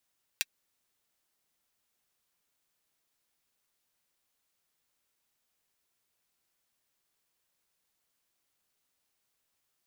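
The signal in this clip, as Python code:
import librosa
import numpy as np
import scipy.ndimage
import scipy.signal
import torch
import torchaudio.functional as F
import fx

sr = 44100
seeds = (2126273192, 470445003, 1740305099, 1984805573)

y = fx.drum_hat(sr, length_s=0.24, from_hz=2200.0, decay_s=0.04)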